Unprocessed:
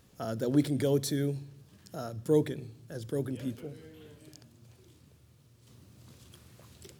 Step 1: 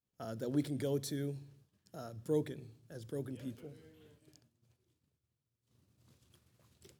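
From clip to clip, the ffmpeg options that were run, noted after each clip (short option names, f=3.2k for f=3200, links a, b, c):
-af "agate=range=-33dB:threshold=-48dB:ratio=3:detection=peak,volume=-8dB"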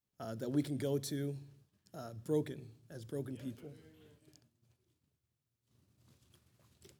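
-af "bandreject=f=490:w=15"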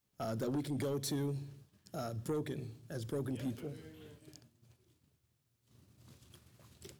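-af "acompressor=threshold=-37dB:ratio=6,aeval=exprs='0.0355*(cos(1*acos(clip(val(0)/0.0355,-1,1)))-cos(1*PI/2))+0.00562*(cos(5*acos(clip(val(0)/0.0355,-1,1)))-cos(5*PI/2))':c=same,volume=2.5dB"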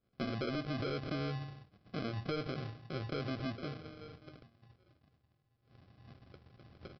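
-af "acompressor=threshold=-38dB:ratio=6,aresample=11025,acrusher=samples=12:mix=1:aa=0.000001,aresample=44100,volume=3.5dB"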